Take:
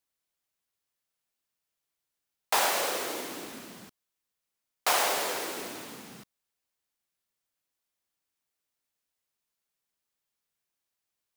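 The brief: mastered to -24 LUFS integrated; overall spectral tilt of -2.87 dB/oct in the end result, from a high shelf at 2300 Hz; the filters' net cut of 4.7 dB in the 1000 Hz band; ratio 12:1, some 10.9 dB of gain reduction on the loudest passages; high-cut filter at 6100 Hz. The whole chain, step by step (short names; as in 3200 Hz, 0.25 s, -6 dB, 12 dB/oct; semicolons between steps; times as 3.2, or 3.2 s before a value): LPF 6100 Hz; bell 1000 Hz -5 dB; high shelf 2300 Hz -6.5 dB; compressor 12:1, threshold -37 dBFS; gain +18.5 dB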